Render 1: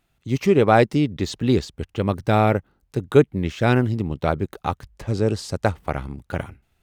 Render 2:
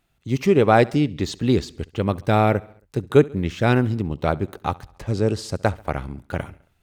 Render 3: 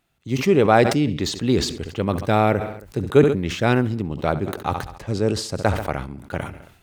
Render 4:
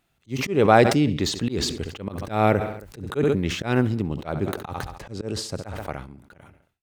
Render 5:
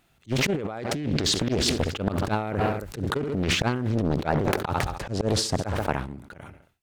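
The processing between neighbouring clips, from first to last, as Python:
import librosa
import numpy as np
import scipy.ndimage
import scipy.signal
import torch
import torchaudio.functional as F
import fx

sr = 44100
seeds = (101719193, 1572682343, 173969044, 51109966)

y1 = fx.echo_feedback(x, sr, ms=68, feedback_pct=56, wet_db=-23.0)
y2 = fx.low_shelf(y1, sr, hz=72.0, db=-9.0)
y2 = fx.sustainer(y2, sr, db_per_s=78.0)
y3 = fx.fade_out_tail(y2, sr, length_s=1.92)
y3 = fx.auto_swell(y3, sr, attack_ms=171.0)
y4 = fx.over_compress(y3, sr, threshold_db=-27.0, ratio=-1.0)
y4 = fx.doppler_dist(y4, sr, depth_ms=1.0)
y4 = y4 * librosa.db_to_amplitude(2.0)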